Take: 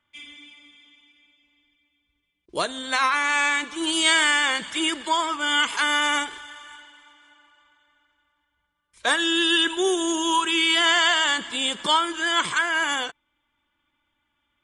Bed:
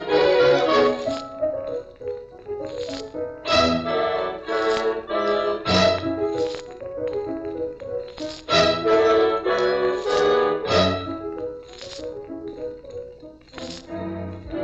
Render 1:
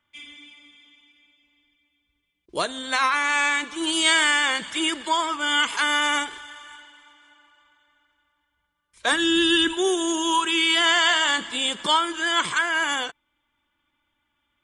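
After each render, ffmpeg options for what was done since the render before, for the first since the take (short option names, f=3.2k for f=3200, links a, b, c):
-filter_complex "[0:a]asplit=3[a][b][c];[a]afade=t=out:st=9.11:d=0.02[d];[b]asubboost=boost=6:cutoff=230,afade=t=in:st=9.11:d=0.02,afade=t=out:st=9.72:d=0.02[e];[c]afade=t=in:st=9.72:d=0.02[f];[d][e][f]amix=inputs=3:normalize=0,asettb=1/sr,asplit=3[g][h][i];[g]atrim=end=11.034[j];[h]atrim=start=11.03:end=11.69,asetpts=PTS-STARTPTS,afade=t=in:d=0.004:c=qsin,afade=t=out:st=0.656:d=0.004:c=qsin,asplit=2[k][l];[l]adelay=28,volume=-11dB[m];[k][m]amix=inputs=2:normalize=0,atrim=end_sample=29106[n];[i]atrim=start=11.686[o];[j][n]acrossfade=d=0.004:c1=hsin:c2=qsin[p];[p][o]acrossfade=d=0.004:c1=qsin:c2=hsin"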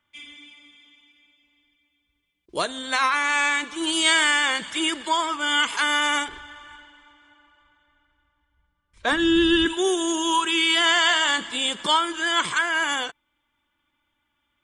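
-filter_complex "[0:a]asettb=1/sr,asplit=3[a][b][c];[a]atrim=end=6.284[d];[b]atrim=start=6.28:end=9.66,asetpts=PTS-STARTPTS,afade=t=in:d=0.004:c=qsin,afade=t=out:st=3.376:d=0.004:c=qsin,aemphasis=mode=reproduction:type=bsi[e];[c]atrim=start=9.656[f];[d][e]acrossfade=d=0.004:c1=hsin:c2=qsin[g];[g][f]acrossfade=d=0.004:c1=qsin:c2=hsin"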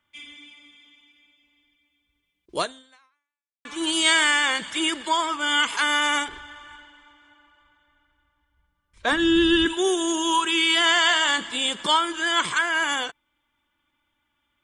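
-filter_complex "[0:a]asplit=2[a][b];[a]atrim=end=3.65,asetpts=PTS-STARTPTS,afade=t=out:st=2.62:d=1.03:c=exp[c];[b]atrim=start=3.65,asetpts=PTS-STARTPTS,afade=t=in:d=0.004:c=hsin[d];[c][d]concat=n=2:v=0:a=1"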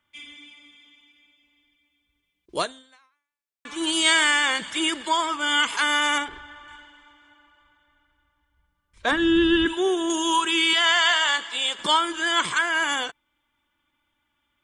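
-filter_complex "[0:a]asettb=1/sr,asplit=3[a][b][c];[a]atrim=end=6.184[d];[b]atrim=start=6.18:end=6.68,asetpts=PTS-STARTPTS,afade=t=in:d=0.004:c=qsin,afade=t=out:st=0.496:d=0.004:c=qsin,highshelf=f=4.6k:g=-10.5[e];[c]atrim=start=6.676[f];[d][e]acrossfade=d=0.004:c1=hsin:c2=qsin[g];[g][f]acrossfade=d=0.004:c1=qsin:c2=hsin,asettb=1/sr,asplit=3[h][i][j];[h]atrim=end=9.114[k];[i]atrim=start=9.11:end=10.1,asetpts=PTS-STARTPTS,afade=t=in:d=0.004:c=qsin,afade=t=out:st=0.986:d=0.004:c=qsin,acrossover=split=3400[l][m];[m]acompressor=threshold=-42dB:ratio=4:attack=1:release=60[n];[l][n]amix=inputs=2:normalize=0[o];[j]atrim=start=10.096[p];[k][o]acrossfade=d=0.004:c1=hsin:c2=qsin[q];[q][p]acrossfade=d=0.004:c1=qsin:c2=hsin,asettb=1/sr,asplit=3[r][s][t];[r]atrim=end=10.734[u];[s]atrim=start=10.73:end=11.79,asetpts=PTS-STARTPTS,afade=t=in:d=0.004:c=qsin,afade=t=out:st=1.056:d=0.004:c=qsin,highpass=560,lowpass=7.6k[v];[t]atrim=start=11.786[w];[u][v]acrossfade=d=0.004:c1=hsin:c2=qsin[x];[x][w]acrossfade=d=0.004:c1=qsin:c2=hsin"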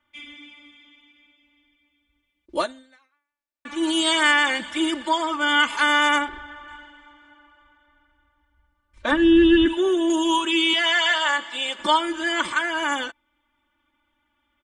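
-af "highshelf=f=3k:g=-9,aecho=1:1:3.4:0.94"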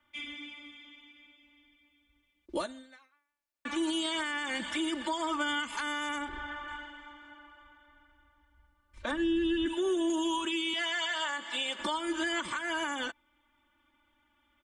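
-filter_complex "[0:a]acrossover=split=230|5900[a][b][c];[a]acompressor=threshold=-40dB:ratio=4[d];[b]acompressor=threshold=-29dB:ratio=4[e];[c]acompressor=threshold=-45dB:ratio=4[f];[d][e][f]amix=inputs=3:normalize=0,alimiter=limit=-23dB:level=0:latency=1:release=145"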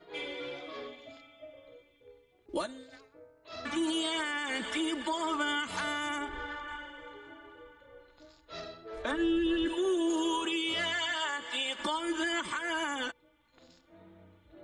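-filter_complex "[1:a]volume=-26dB[a];[0:a][a]amix=inputs=2:normalize=0"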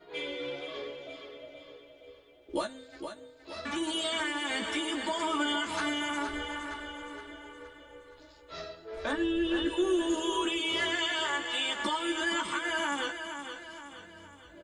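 -filter_complex "[0:a]asplit=2[a][b];[b]adelay=14,volume=-4.5dB[c];[a][c]amix=inputs=2:normalize=0,aecho=1:1:468|936|1404|1872|2340:0.376|0.177|0.083|0.039|0.0183"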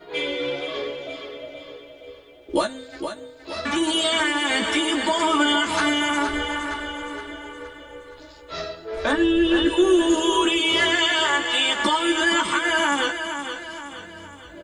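-af "volume=10.5dB"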